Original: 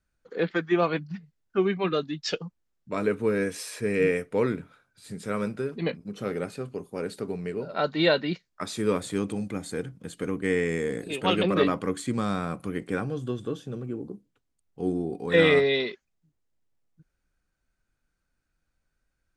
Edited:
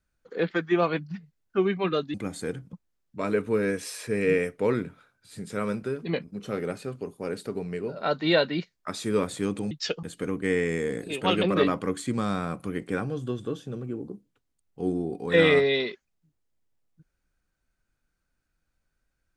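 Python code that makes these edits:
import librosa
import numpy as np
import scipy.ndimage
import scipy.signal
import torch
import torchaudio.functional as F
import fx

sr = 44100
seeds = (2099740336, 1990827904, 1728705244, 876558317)

y = fx.edit(x, sr, fx.swap(start_s=2.14, length_s=0.32, other_s=9.44, other_length_s=0.59), tone=tone)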